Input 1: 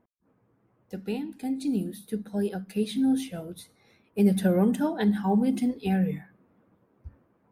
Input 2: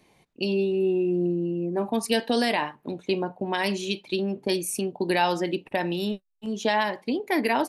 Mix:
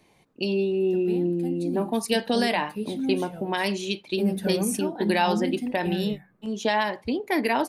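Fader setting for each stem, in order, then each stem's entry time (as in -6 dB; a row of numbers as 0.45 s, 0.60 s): -4.5 dB, 0.0 dB; 0.00 s, 0.00 s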